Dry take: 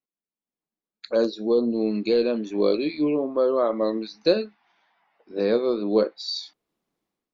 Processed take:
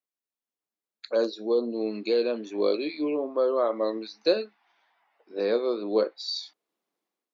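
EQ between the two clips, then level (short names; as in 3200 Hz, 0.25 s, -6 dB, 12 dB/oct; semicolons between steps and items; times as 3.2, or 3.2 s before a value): HPF 330 Hz 12 dB/oct; -2.0 dB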